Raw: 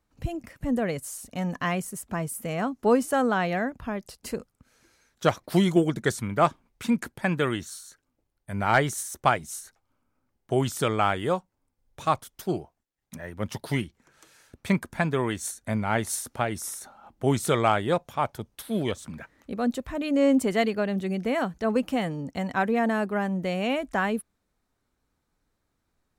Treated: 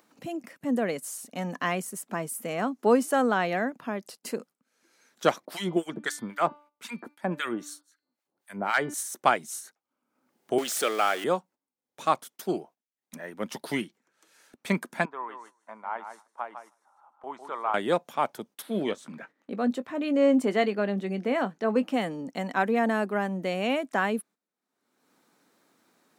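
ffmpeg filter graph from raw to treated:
ffmpeg -i in.wav -filter_complex "[0:a]asettb=1/sr,asplit=3[link_01][link_02][link_03];[link_01]atrim=end=5.454[link_04];[link_02]atrim=start=5.45:end=8.94,asetpts=PTS-STARTPTS,afade=type=in:duration=0.004:curve=qsin,afade=type=out:start_time=3.486:duration=0.004:curve=qsin,equalizer=frequency=810:width_type=o:width=2.1:gain=2.5,acrossover=split=1100[link_05][link_06];[link_05]aeval=exprs='val(0)*(1-1/2+1/2*cos(2*PI*3.8*n/s))':channel_layout=same[link_07];[link_06]aeval=exprs='val(0)*(1-1/2-1/2*cos(2*PI*3.8*n/s))':channel_layout=same[link_08];[link_07][link_08]amix=inputs=2:normalize=0,bandreject=frequency=294.5:width_type=h:width=4,bandreject=frequency=589:width_type=h:width=4,bandreject=frequency=883.5:width_type=h:width=4,bandreject=frequency=1178:width_type=h:width=4,bandreject=frequency=1472.5:width_type=h:width=4,bandreject=frequency=1767:width_type=h:width=4,bandreject=frequency=2061.5:width_type=h:width=4,bandreject=frequency=2356:width_type=h:width=4,bandreject=frequency=2650.5:width_type=h:width=4,bandreject=frequency=2945:width_type=h:width=4,bandreject=frequency=3239.5:width_type=h:width=4,bandreject=frequency=3534:width_type=h:width=4,bandreject=frequency=3828.5:width_type=h:width=4,bandreject=frequency=4123:width_type=h:width=4,bandreject=frequency=4417.5:width_type=h:width=4,bandreject=frequency=4712:width_type=h:width=4,bandreject=frequency=5006.5:width_type=h:width=4[link_09];[link_03]atrim=start=8.936[link_10];[link_04][link_09]acrossfade=duration=0.004:curve1=hsin:curve2=qsin[link_11];[link_11][link_10]acrossfade=duration=0.004:curve1=qsin:curve2=hsin,asettb=1/sr,asplit=3[link_12][link_13][link_14];[link_12]atrim=end=10.584[link_15];[link_13]atrim=start=10.58:end=11.24,asetpts=PTS-STARTPTS,afade=type=in:duration=0.004:curve=qsin,afade=type=out:start_time=0.656:duration=0.004:curve=qsin,aeval=exprs='val(0)+0.5*0.0316*sgn(val(0))':channel_layout=same,highpass=440,equalizer=frequency=960:width=5.6:gain=-11.5[link_16];[link_14]atrim=start=11.236[link_17];[link_15][link_16]acrossfade=duration=0.004:curve1=hsin:curve2=qsin[link_18];[link_18][link_17]acrossfade=duration=0.004:curve1=qsin:curve2=hsin,asettb=1/sr,asplit=3[link_19][link_20][link_21];[link_19]atrim=end=15.054[link_22];[link_20]atrim=start=15.05:end=17.74,asetpts=PTS-STARTPTS,afade=type=in:duration=0.004:curve=qsin,afade=type=out:start_time=2.686:duration=0.004:curve=qsin,bandpass=frequency=1000:width_type=q:width=3.8,aecho=1:1:154|308:0.376|0.0601,atrim=end_sample=118629[link_23];[link_21]atrim=start=17.736[link_24];[link_22][link_23]acrossfade=duration=0.004:curve1=hsin:curve2=qsin[link_25];[link_25][link_24]acrossfade=duration=0.004:curve1=qsin:curve2=hsin,asettb=1/sr,asplit=3[link_26][link_27][link_28];[link_26]atrim=end=18.624[link_29];[link_27]atrim=start=18.62:end=21.94,asetpts=PTS-STARTPTS,afade=type=in:duration=0.004:curve=qsin,afade=type=out:start_time=3.316:duration=0.004:curve=qsin,lowpass=frequency=3500:poles=1,asplit=2[link_30][link_31];[link_31]adelay=20,volume=-13dB[link_32];[link_30][link_32]amix=inputs=2:normalize=0,atrim=end_sample=146412[link_33];[link_28]atrim=start=21.936[link_34];[link_29][link_33]acrossfade=duration=0.004:curve1=hsin:curve2=qsin[link_35];[link_35][link_34]acrossfade=duration=0.004:curve1=qsin:curve2=hsin,highpass=frequency=200:width=0.5412,highpass=frequency=200:width=1.3066,agate=range=-12dB:threshold=-49dB:ratio=16:detection=peak,acompressor=mode=upward:threshold=-46dB:ratio=2.5" out.wav

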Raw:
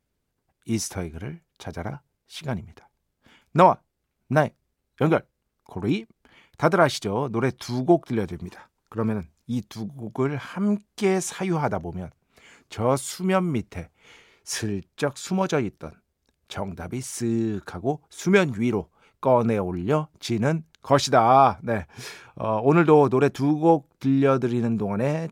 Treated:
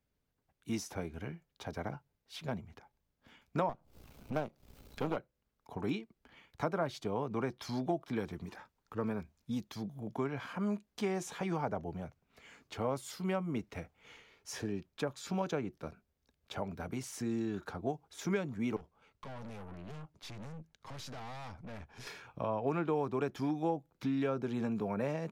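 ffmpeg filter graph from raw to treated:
ffmpeg -i in.wav -filter_complex "[0:a]asettb=1/sr,asplit=3[link_01][link_02][link_03];[link_01]atrim=end=3.694[link_04];[link_02]atrim=start=3.69:end=5.17,asetpts=PTS-STARTPTS,afade=type=in:duration=0.004:curve=qsin,afade=type=out:start_time=1.476:duration=0.004:curve=qsin,aeval=exprs='if(lt(val(0),0),0.251*val(0),val(0))':channel_layout=same,acompressor=mode=upward:threshold=-23dB:ratio=2.5:attack=3.2:release=140:knee=2.83:detection=peak,equalizer=frequency=1800:width_type=o:width=0.42:gain=-6.5[link_05];[link_03]atrim=start=5.166[link_06];[link_04][link_05]acrossfade=duration=0.004:curve1=hsin:curve2=qsin[link_07];[link_07][link_06]acrossfade=duration=0.004:curve1=qsin:curve2=hsin,asettb=1/sr,asplit=3[link_08][link_09][link_10];[link_08]atrim=end=18.764[link_11];[link_09]atrim=start=18.76:end=22.07,asetpts=PTS-STARTPTS,afade=type=in:duration=0.004:curve=qsin,afade=type=out:start_time=3.306:duration=0.004:curve=qsin,acrossover=split=150|3000[link_12][link_13][link_14];[link_13]acompressor=threshold=-29dB:ratio=5:attack=3.2:release=140:knee=2.83:detection=peak[link_15];[link_12][link_15][link_14]amix=inputs=3:normalize=0,aeval=exprs='(tanh(79.4*val(0)+0.55)-tanh(0.55))/79.4':channel_layout=same,lowpass=frequency=12000:width=0.5412,lowpass=frequency=12000:width=1.3066[link_16];[link_10]atrim=start=22.066[link_17];[link_11][link_16]acrossfade=duration=0.004:curve1=hsin:curve2=qsin[link_18];[link_18][link_17]acrossfade=duration=0.004:curve1=qsin:curve2=hsin,equalizer=frequency=9100:width=1.2:gain=-6,bandreject=frequency=360:width=12,acrossover=split=210|890[link_19][link_20][link_21];[link_19]acompressor=threshold=-39dB:ratio=4[link_22];[link_20]acompressor=threshold=-28dB:ratio=4[link_23];[link_21]acompressor=threshold=-38dB:ratio=4[link_24];[link_22][link_23][link_24]amix=inputs=3:normalize=0,volume=-5.5dB" out.wav

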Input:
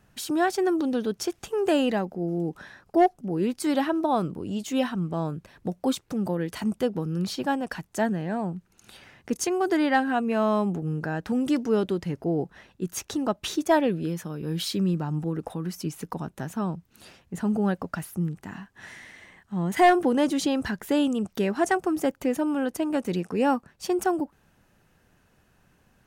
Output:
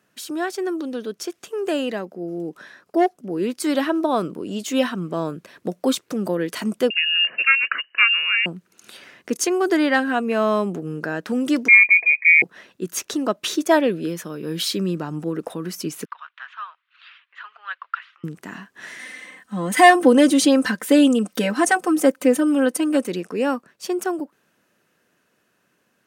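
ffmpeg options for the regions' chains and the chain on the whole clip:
ffmpeg -i in.wav -filter_complex "[0:a]asettb=1/sr,asplit=3[link_01][link_02][link_03];[link_01]atrim=end=6.904[link_04];[link_02]atrim=start=6.9:end=8.46,asetpts=PTS-STARTPTS,afade=type=in:duration=0.004:curve=qsin,afade=type=out:start_time=1.556:duration=0.004:curve=qsin,lowpass=frequency=2600:width_type=q:width=0.5098,lowpass=frequency=2600:width_type=q:width=0.6013,lowpass=frequency=2600:width_type=q:width=0.9,lowpass=frequency=2600:width_type=q:width=2.563,afreqshift=-3000,equalizer=frequency=1700:width=5.7:gain=14.5[link_05];[link_03]atrim=start=8.456[link_06];[link_04][link_05]acrossfade=duration=0.004:curve1=hsin:curve2=qsin[link_07];[link_07][link_06]acrossfade=duration=0.004:curve1=qsin:curve2=hsin,asettb=1/sr,asplit=3[link_08][link_09][link_10];[link_08]atrim=end=11.684[link_11];[link_09]atrim=start=11.68:end=12.42,asetpts=PTS-STARTPTS,afade=type=in:duration=0.004:curve=qsin,afade=type=out:start_time=0.736:duration=0.004:curve=qsin,equalizer=frequency=230:width_type=o:width=2.4:gain=7.5,lowpass=frequency=2200:width_type=q:width=0.5098,lowpass=frequency=2200:width_type=q:width=0.6013,lowpass=frequency=2200:width_type=q:width=0.9,lowpass=frequency=2200:width_type=q:width=2.563,afreqshift=-2600,asuperstop=centerf=1400:order=4:qfactor=2.3[link_12];[link_10]atrim=start=12.416[link_13];[link_11][link_12]acrossfade=duration=0.004:curve1=hsin:curve2=qsin[link_14];[link_14][link_13]acrossfade=duration=0.004:curve1=qsin:curve2=hsin,asettb=1/sr,asplit=3[link_15][link_16][link_17];[link_15]atrim=end=16.054[link_18];[link_16]atrim=start=16.05:end=18.24,asetpts=PTS-STARTPTS,afade=type=in:duration=0.004:curve=qsin,afade=type=out:start_time=2.186:duration=0.004:curve=qsin,aphaser=in_gain=1:out_gain=1:delay=4.1:decay=0.29:speed=1.2:type=triangular,asuperpass=centerf=2000:order=8:qfactor=0.81[link_19];[link_17]atrim=start=18.236[link_20];[link_18][link_19]acrossfade=duration=0.004:curve1=hsin:curve2=qsin[link_21];[link_21][link_20]acrossfade=duration=0.004:curve1=qsin:curve2=hsin,asettb=1/sr,asplit=3[link_22][link_23][link_24];[link_22]atrim=end=18.994[link_25];[link_23]atrim=start=18.99:end=23.07,asetpts=PTS-STARTPTS,afade=type=in:duration=0.004:curve=qsin,afade=type=out:start_time=4.076:duration=0.004:curve=qsin,equalizer=frequency=9000:width=5.2:gain=8,aecho=1:1:3.9:0.91,atrim=end_sample=179928[link_26];[link_24]atrim=start=23.066[link_27];[link_25][link_26]acrossfade=duration=0.004:curve1=hsin:curve2=qsin[link_28];[link_28][link_27]acrossfade=duration=0.004:curve1=qsin:curve2=hsin,highpass=270,equalizer=frequency=820:width=4.3:gain=-8.5,dynaudnorm=framelen=790:gausssize=9:maxgain=11.5dB" out.wav

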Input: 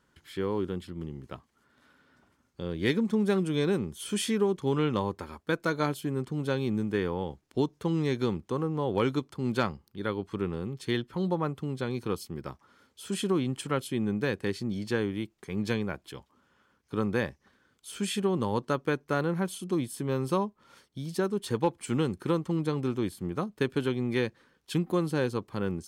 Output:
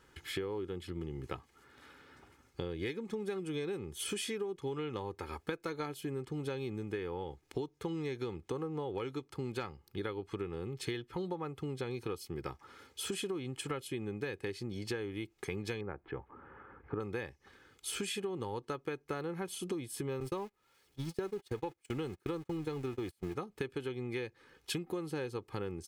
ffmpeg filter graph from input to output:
ffmpeg -i in.wav -filter_complex "[0:a]asettb=1/sr,asplit=3[link_01][link_02][link_03];[link_01]atrim=end=15.814[link_04];[link_02]atrim=start=15.81:end=17,asetpts=PTS-STARTPTS,afade=type=in:duration=0.004:curve=qsin,afade=type=out:start_time=1.186:duration=0.004:curve=qsin,lowpass=frequency=1700:width=0.5412,lowpass=frequency=1700:width=1.3066,acompressor=mode=upward:threshold=-49dB:ratio=2.5:attack=3.2:release=140:knee=2.83:detection=peak[link_05];[link_03]atrim=start=16.996[link_06];[link_04][link_05]acrossfade=duration=0.004:curve1=hsin:curve2=qsin[link_07];[link_07][link_06]acrossfade=duration=0.004:curve1=qsin:curve2=hsin,asettb=1/sr,asplit=3[link_08][link_09][link_10];[link_08]atrim=end=20.204[link_11];[link_09]atrim=start=20.2:end=23.35,asetpts=PTS-STARTPTS,afade=type=in:duration=0.004:curve=qsin,afade=type=out:start_time=3.146:duration=0.004:curve=qsin,aeval=exprs='val(0)+0.5*0.0119*sgn(val(0))':channel_layout=same,agate=range=-33dB:threshold=-33dB:ratio=16:release=100:detection=peak[link_12];[link_10]atrim=start=23.346[link_13];[link_11][link_12]acrossfade=duration=0.004:curve1=hsin:curve2=qsin[link_14];[link_14][link_13]acrossfade=duration=0.004:curve1=qsin:curve2=hsin,equalizer=frequency=2300:width=3.2:gain=4.5,aecho=1:1:2.4:0.52,acompressor=threshold=-40dB:ratio=12,volume=5dB" out.wav

